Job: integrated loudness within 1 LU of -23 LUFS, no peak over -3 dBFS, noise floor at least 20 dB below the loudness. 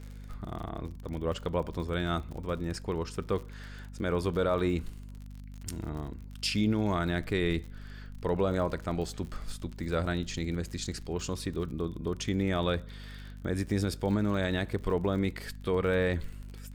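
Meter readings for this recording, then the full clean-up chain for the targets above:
ticks 48/s; hum 50 Hz; harmonics up to 250 Hz; hum level -42 dBFS; loudness -32.0 LUFS; peak -17.5 dBFS; loudness target -23.0 LUFS
-> de-click; de-hum 50 Hz, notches 5; gain +9 dB

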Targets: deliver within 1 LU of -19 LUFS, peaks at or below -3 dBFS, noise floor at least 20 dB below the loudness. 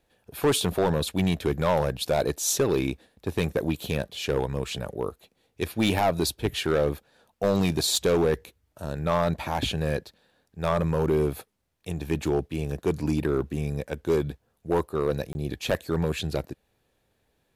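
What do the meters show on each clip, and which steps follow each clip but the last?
clipped 1.4%; flat tops at -16.5 dBFS; dropouts 1; longest dropout 21 ms; loudness -27.0 LUFS; peak -16.5 dBFS; loudness target -19.0 LUFS
-> clip repair -16.5 dBFS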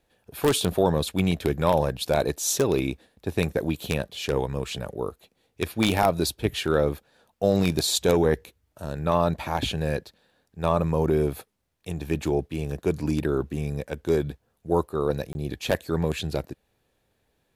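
clipped 0.0%; dropouts 1; longest dropout 21 ms
-> interpolate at 15.33, 21 ms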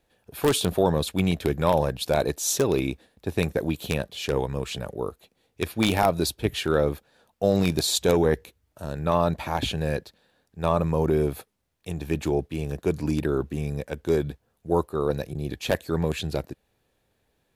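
dropouts 0; loudness -26.0 LUFS; peak -7.5 dBFS; loudness target -19.0 LUFS
-> gain +7 dB; limiter -3 dBFS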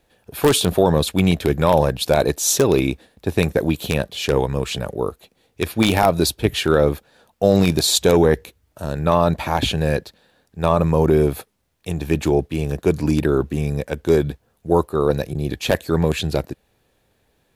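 loudness -19.5 LUFS; peak -3.0 dBFS; noise floor -65 dBFS

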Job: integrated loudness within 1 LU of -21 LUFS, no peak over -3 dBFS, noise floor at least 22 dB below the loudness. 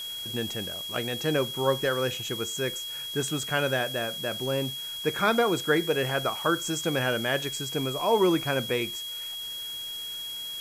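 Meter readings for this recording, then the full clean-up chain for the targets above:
steady tone 3300 Hz; tone level -34 dBFS; noise floor -36 dBFS; noise floor target -50 dBFS; loudness -28.0 LUFS; peak -10.5 dBFS; loudness target -21.0 LUFS
-> notch 3300 Hz, Q 30; noise print and reduce 14 dB; gain +7 dB

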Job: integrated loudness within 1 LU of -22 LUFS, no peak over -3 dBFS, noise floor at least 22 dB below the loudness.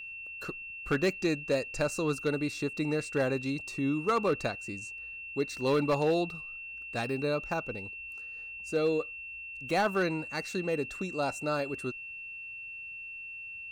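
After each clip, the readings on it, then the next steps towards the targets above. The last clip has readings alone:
clipped 0.3%; flat tops at -20.5 dBFS; steady tone 2700 Hz; tone level -40 dBFS; loudness -32.5 LUFS; peak -20.5 dBFS; loudness target -22.0 LUFS
-> clip repair -20.5 dBFS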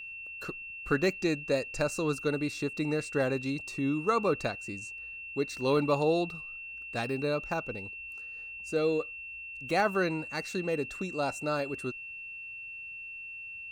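clipped 0.0%; steady tone 2700 Hz; tone level -40 dBFS
-> notch 2700 Hz, Q 30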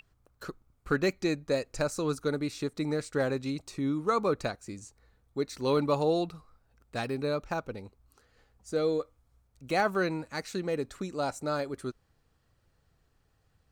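steady tone none; loudness -31.5 LUFS; peak -13.5 dBFS; loudness target -22.0 LUFS
-> gain +9.5 dB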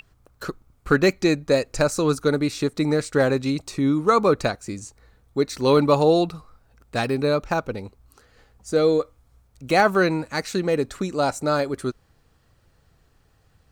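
loudness -22.0 LUFS; peak -4.0 dBFS; noise floor -61 dBFS

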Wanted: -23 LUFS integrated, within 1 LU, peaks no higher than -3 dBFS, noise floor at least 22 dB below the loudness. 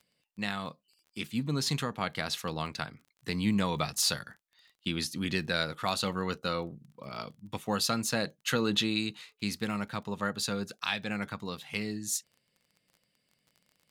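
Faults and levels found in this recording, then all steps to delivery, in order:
ticks 23/s; loudness -32.5 LUFS; peak -14.0 dBFS; loudness target -23.0 LUFS
-> de-click; gain +9.5 dB

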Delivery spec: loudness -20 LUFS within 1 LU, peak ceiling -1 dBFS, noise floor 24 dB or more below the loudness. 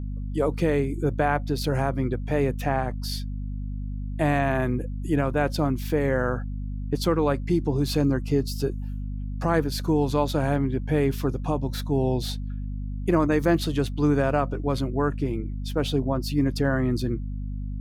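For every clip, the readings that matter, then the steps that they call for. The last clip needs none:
hum 50 Hz; harmonics up to 250 Hz; hum level -28 dBFS; loudness -26.0 LUFS; peak -9.5 dBFS; loudness target -20.0 LUFS
-> de-hum 50 Hz, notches 5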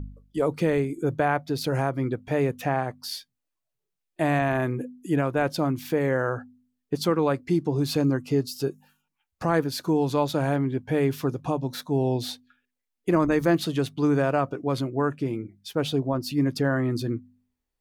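hum none; loudness -26.0 LUFS; peak -10.0 dBFS; loudness target -20.0 LUFS
-> gain +6 dB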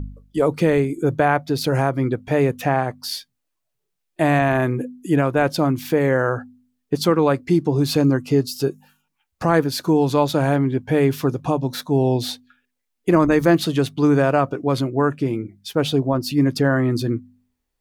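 loudness -20.0 LUFS; peak -4.0 dBFS; noise floor -77 dBFS

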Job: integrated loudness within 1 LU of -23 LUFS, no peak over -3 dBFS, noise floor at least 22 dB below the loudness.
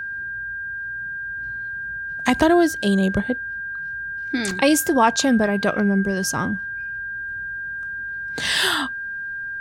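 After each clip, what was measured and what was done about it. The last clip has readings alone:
dropouts 1; longest dropout 2.4 ms; steady tone 1600 Hz; tone level -27 dBFS; loudness -22.0 LUFS; peak -4.0 dBFS; loudness target -23.0 LUFS
-> interpolate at 4.51, 2.4 ms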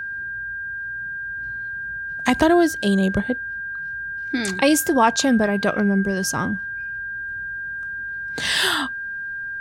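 dropouts 0; steady tone 1600 Hz; tone level -27 dBFS
-> notch 1600 Hz, Q 30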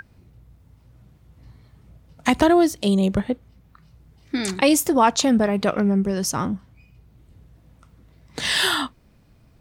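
steady tone none; loudness -20.5 LUFS; peak -3.0 dBFS; loudness target -23.0 LUFS
-> gain -2.5 dB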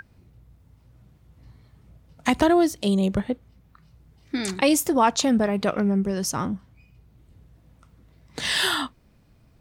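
loudness -23.0 LUFS; peak -5.5 dBFS; noise floor -58 dBFS

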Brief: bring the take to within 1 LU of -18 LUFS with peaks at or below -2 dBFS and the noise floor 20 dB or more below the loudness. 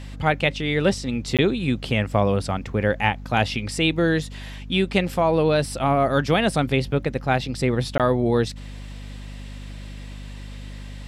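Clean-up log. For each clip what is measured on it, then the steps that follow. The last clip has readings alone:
dropouts 2; longest dropout 17 ms; hum 50 Hz; harmonics up to 250 Hz; hum level -33 dBFS; loudness -22.0 LUFS; peak -4.5 dBFS; loudness target -18.0 LUFS
-> interpolate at 1.37/7.98, 17 ms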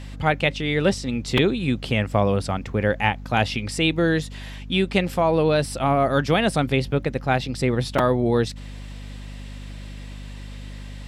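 dropouts 0; hum 50 Hz; harmonics up to 250 Hz; hum level -33 dBFS
-> notches 50/100/150/200/250 Hz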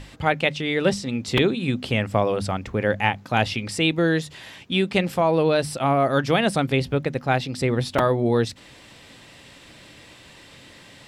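hum none; loudness -22.5 LUFS; peak -4.5 dBFS; loudness target -18.0 LUFS
-> gain +4.5 dB; limiter -2 dBFS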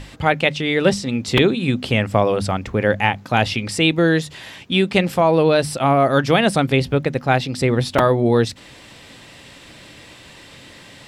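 loudness -18.0 LUFS; peak -2.0 dBFS; noise floor -43 dBFS

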